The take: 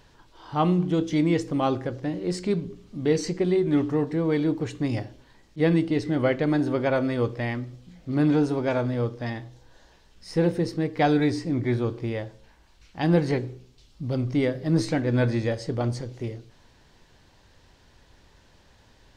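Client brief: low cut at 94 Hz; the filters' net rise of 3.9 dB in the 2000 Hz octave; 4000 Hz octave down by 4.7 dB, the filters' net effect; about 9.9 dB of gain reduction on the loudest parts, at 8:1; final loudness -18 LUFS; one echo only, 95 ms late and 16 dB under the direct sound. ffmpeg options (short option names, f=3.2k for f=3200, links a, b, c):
-af "highpass=94,equalizer=f=2k:t=o:g=6.5,equalizer=f=4k:t=o:g=-8.5,acompressor=threshold=-27dB:ratio=8,aecho=1:1:95:0.158,volume=14.5dB"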